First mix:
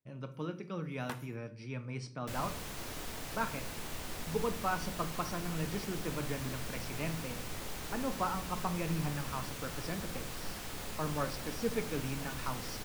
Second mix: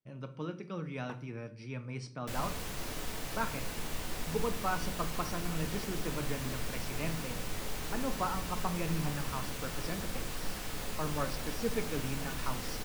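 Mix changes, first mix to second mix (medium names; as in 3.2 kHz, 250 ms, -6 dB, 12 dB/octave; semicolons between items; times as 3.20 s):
first sound: add band-pass filter 400 Hz, Q 0.59; second sound: send +8.5 dB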